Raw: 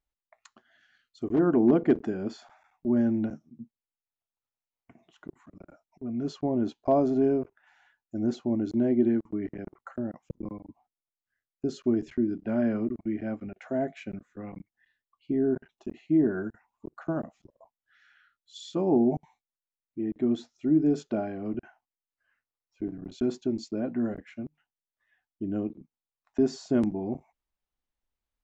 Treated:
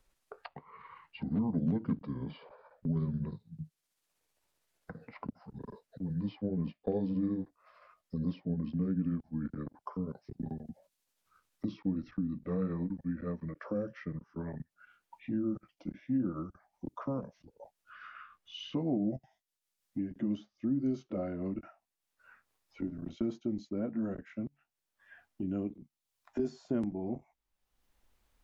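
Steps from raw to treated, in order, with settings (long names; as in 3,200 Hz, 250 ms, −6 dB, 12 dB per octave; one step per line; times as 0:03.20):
pitch glide at a constant tempo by −7.5 semitones ending unshifted
multiband upward and downward compressor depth 70%
level −5 dB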